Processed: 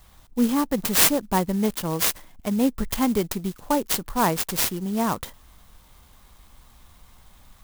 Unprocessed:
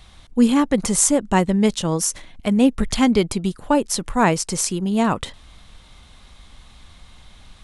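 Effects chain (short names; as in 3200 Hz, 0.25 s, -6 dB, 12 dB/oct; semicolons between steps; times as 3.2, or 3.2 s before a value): fifteen-band EQ 1000 Hz +4 dB, 2500 Hz -4 dB, 10000 Hz +12 dB; clock jitter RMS 0.053 ms; gain -6 dB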